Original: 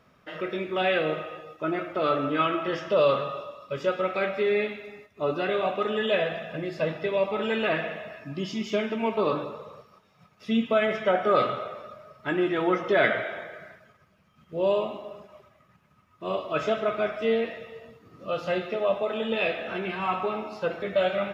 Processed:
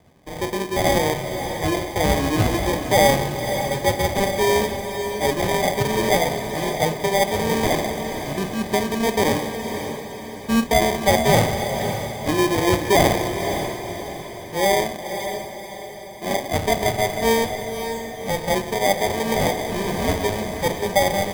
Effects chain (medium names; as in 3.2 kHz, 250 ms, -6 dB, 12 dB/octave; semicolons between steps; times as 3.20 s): sample-and-hold 32×; on a send: echo that smears into a reverb 547 ms, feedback 48%, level -8 dB; on the sum: trim +5.5 dB